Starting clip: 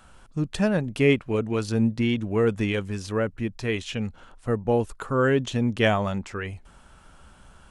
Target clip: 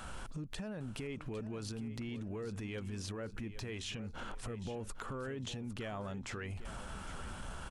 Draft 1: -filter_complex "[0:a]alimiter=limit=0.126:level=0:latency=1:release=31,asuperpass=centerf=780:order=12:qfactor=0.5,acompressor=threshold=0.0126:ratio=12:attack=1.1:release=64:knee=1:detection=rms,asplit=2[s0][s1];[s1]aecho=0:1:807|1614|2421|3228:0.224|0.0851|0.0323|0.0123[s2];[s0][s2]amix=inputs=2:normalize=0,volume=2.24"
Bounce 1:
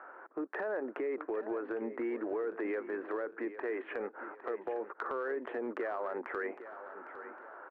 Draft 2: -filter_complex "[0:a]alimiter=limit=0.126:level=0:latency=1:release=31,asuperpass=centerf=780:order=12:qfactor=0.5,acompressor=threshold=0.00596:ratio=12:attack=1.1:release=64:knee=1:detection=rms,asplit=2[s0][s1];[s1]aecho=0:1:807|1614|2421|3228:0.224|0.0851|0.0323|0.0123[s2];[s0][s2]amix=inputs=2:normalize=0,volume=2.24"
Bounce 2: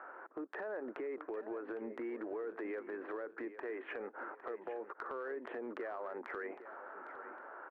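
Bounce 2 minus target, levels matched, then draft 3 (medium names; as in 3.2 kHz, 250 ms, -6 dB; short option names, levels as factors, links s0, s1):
1 kHz band +3.5 dB
-filter_complex "[0:a]alimiter=limit=0.126:level=0:latency=1:release=31,acompressor=threshold=0.00596:ratio=12:attack=1.1:release=64:knee=1:detection=rms,asplit=2[s0][s1];[s1]aecho=0:1:807|1614|2421|3228:0.224|0.0851|0.0323|0.0123[s2];[s0][s2]amix=inputs=2:normalize=0,volume=2.24"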